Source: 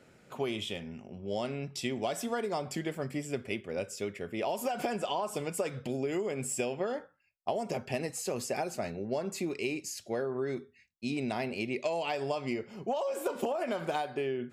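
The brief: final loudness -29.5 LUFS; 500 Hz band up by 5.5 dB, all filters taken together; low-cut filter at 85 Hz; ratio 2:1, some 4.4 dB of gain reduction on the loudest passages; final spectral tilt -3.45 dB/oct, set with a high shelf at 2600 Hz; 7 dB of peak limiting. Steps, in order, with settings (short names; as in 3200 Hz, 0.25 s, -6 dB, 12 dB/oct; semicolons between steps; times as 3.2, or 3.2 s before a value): HPF 85 Hz; bell 500 Hz +6.5 dB; high shelf 2600 Hz +8 dB; compressor 2:1, threshold -31 dBFS; gain +5 dB; limiter -18.5 dBFS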